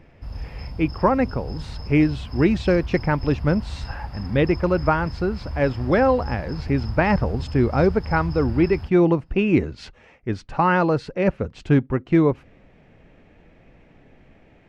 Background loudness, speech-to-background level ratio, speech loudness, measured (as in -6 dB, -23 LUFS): -33.5 LUFS, 12.0 dB, -21.5 LUFS